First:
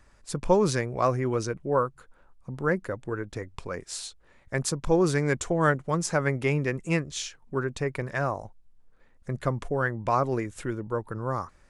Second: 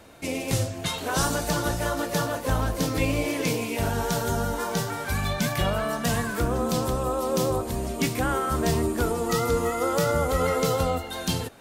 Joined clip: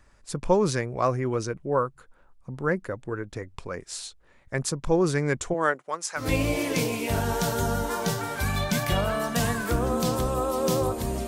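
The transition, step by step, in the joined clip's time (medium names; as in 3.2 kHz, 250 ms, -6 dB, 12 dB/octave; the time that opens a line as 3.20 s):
first
5.53–6.29 s: high-pass 270 Hz -> 1.4 kHz
6.22 s: go over to second from 2.91 s, crossfade 0.14 s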